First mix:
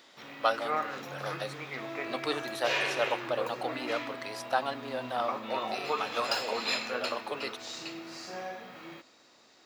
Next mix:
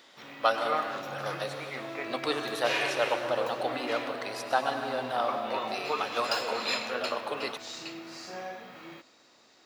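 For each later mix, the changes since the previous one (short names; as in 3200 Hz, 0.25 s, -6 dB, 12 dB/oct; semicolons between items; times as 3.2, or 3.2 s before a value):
reverb: on, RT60 2.5 s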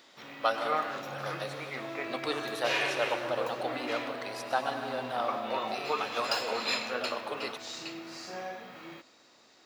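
speech -3.0 dB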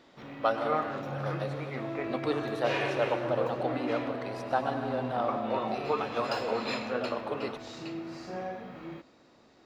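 master: add tilt -3.5 dB/oct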